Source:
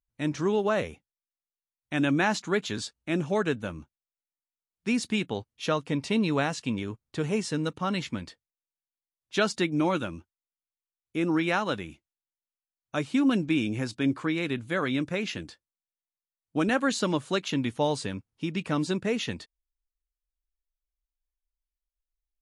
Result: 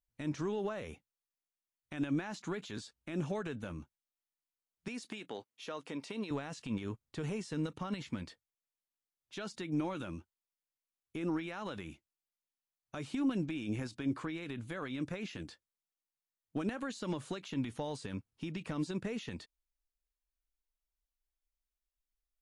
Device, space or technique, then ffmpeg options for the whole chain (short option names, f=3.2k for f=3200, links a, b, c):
de-esser from a sidechain: -filter_complex "[0:a]asplit=2[a][b];[b]highpass=f=4k:p=1,apad=whole_len=988590[c];[a][c]sidechaincompress=threshold=-47dB:ratio=4:attack=1.5:release=42,asettb=1/sr,asplit=3[d][e][f];[d]atrim=end=4.884[g];[e]atrim=start=4.88:end=6.31,asetpts=PTS-STARTPTS,afade=t=in:d=0.004:c=qsin,afade=t=out:st=1.426:d=0.004:c=qsin,highpass=300[h];[f]atrim=start=6.306[i];[g][h]acrossfade=d=0.004:c1=hsin:c2=qsin[j];[j][i]acrossfade=d=0.004:c1=qsin:c2=hsin,volume=-3dB"